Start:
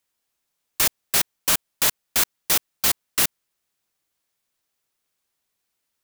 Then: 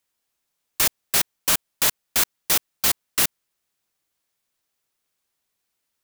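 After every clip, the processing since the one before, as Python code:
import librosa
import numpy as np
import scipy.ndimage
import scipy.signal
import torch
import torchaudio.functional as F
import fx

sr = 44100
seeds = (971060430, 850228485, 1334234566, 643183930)

y = x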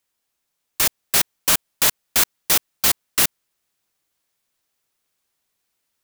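y = fx.rider(x, sr, range_db=10, speed_s=0.5)
y = F.gain(torch.from_numpy(y), 3.0).numpy()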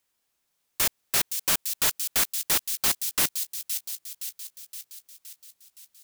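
y = 10.0 ** (-19.0 / 20.0) * np.tanh(x / 10.0 ** (-19.0 / 20.0))
y = fx.echo_wet_highpass(y, sr, ms=518, feedback_pct=57, hz=4000.0, wet_db=-6)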